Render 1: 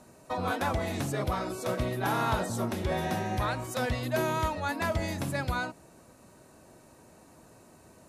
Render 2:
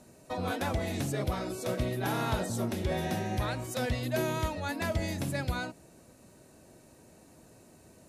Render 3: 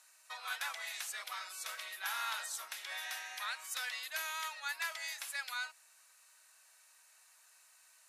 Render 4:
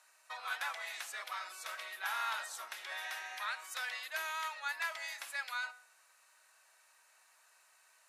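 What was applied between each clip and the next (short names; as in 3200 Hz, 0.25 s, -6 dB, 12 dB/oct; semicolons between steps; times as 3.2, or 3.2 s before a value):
bell 1100 Hz -7 dB 1.1 oct
HPF 1200 Hz 24 dB/oct
high shelf 2800 Hz -10.5 dB; de-hum 248 Hz, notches 32; gain +4.5 dB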